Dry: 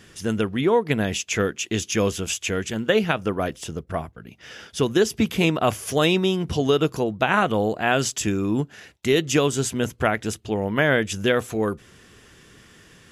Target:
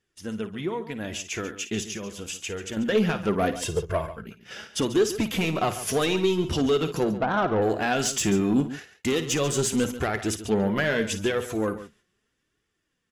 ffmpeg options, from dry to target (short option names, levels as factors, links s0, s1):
-filter_complex "[0:a]agate=range=0.1:threshold=0.00891:ratio=16:detection=peak,asettb=1/sr,asplit=3[s0][s1][s2];[s0]atrim=end=1.854[s3];[s1]atrim=start=1.85:end=2.77,asetpts=PTS-STARTPTS,afade=t=in:d=0.004:c=qsin,afade=t=out:st=0.916:d=0.004:c=qsin,acompressor=threshold=0.0282:ratio=10[s4];[s2]atrim=start=2.766[s5];[s3][s4]acrossfade=d=0.004:c1=hsin:c2=qsin[s6];[s6][s5]acrossfade=d=0.004:c1=qsin:c2=hsin,asettb=1/sr,asplit=3[s7][s8][s9];[s7]atrim=end=3.544[s10];[s8]atrim=start=3.54:end=4.1,asetpts=PTS-STARTPTS,afade=t=in:d=0.004:c=qsin,afade=t=out:st=0.556:d=0.004:c=qsin,aecho=1:1:1.9:0.86,atrim=end_sample=24696[s11];[s9]atrim=start=4.096[s12];[s10][s11]acrossfade=d=0.004:c1=hsin:c2=qsin[s13];[s13][s12]acrossfade=d=0.004:c1=qsin:c2=hsin,asettb=1/sr,asplit=3[s14][s15][s16];[s14]atrim=end=7.124[s17];[s15]atrim=start=7.12:end=7.62,asetpts=PTS-STARTPTS,afade=t=in:d=0.004:c=qsin,afade=t=out:st=0.496:d=0.004:c=qsin,lowpass=f=1400:w=0.5412,lowpass=f=1400:w=1.3066[s18];[s16]atrim=start=7.616[s19];[s17][s18]acrossfade=d=0.004:c1=hsin:c2=qsin[s20];[s20][s19]acrossfade=d=0.004:c1=qsin:c2=hsin,alimiter=limit=0.224:level=0:latency=1:release=207,dynaudnorm=f=310:g=13:m=4.73,asoftclip=type=tanh:threshold=0.376,flanger=delay=2.2:depth=3.6:regen=40:speed=0.79:shape=triangular,aecho=1:1:55|140:0.224|0.211,volume=0.596"